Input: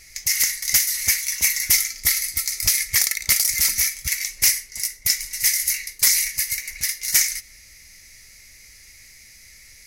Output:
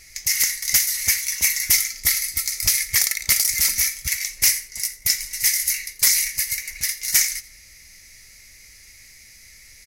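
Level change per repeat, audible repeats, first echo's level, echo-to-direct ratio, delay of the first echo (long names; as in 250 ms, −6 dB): −12.5 dB, 2, −19.5 dB, −19.5 dB, 85 ms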